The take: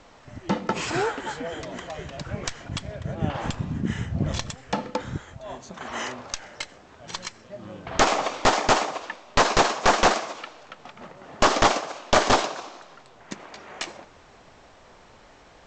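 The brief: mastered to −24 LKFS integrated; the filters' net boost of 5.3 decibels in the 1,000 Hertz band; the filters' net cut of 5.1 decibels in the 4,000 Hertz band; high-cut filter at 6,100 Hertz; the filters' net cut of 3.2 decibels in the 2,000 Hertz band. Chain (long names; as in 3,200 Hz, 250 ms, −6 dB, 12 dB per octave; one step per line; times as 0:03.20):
low-pass filter 6,100 Hz
parametric band 1,000 Hz +8.5 dB
parametric band 2,000 Hz −7 dB
parametric band 4,000 Hz −4 dB
level −2 dB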